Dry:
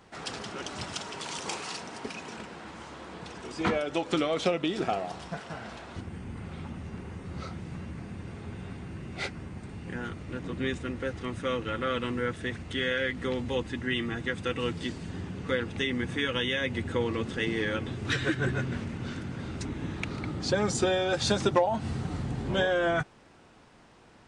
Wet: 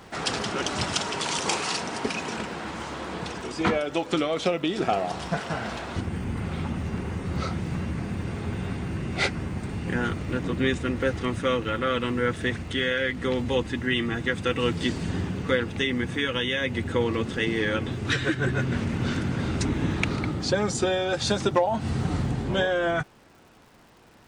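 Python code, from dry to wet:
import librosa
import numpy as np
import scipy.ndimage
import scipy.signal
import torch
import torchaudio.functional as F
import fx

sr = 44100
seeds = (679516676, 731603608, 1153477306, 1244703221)

y = fx.rider(x, sr, range_db=4, speed_s=0.5)
y = fx.dmg_crackle(y, sr, seeds[0], per_s=210.0, level_db=-54.0)
y = F.gain(torch.from_numpy(y), 5.5).numpy()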